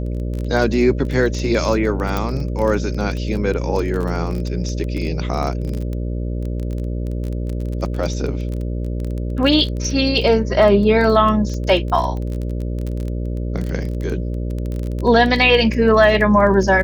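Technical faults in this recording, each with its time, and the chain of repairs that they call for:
buzz 60 Hz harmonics 10 -23 dBFS
crackle 21 per s -23 dBFS
2.17 s: pop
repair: de-click; de-hum 60 Hz, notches 10

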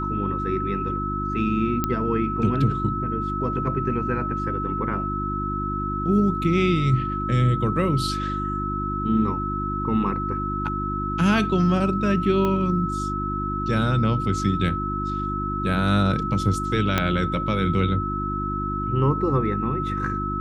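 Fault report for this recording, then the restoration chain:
hum 50 Hz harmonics 7 -29 dBFS
whine 1.3 kHz -27 dBFS
1.84 s: pop -9 dBFS
12.45 s: pop -13 dBFS
16.98 s: pop -6 dBFS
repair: de-click; de-hum 50 Hz, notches 7; band-stop 1.3 kHz, Q 30

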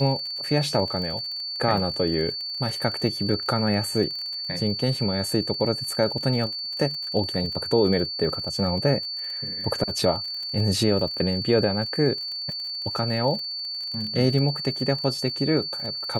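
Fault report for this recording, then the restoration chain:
crackle 43 per s -32 dBFS
whine 4.5 kHz -29 dBFS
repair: de-click; band-stop 4.5 kHz, Q 30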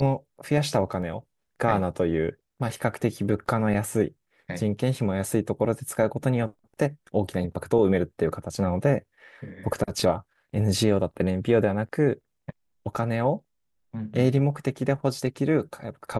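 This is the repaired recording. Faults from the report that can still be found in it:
nothing left

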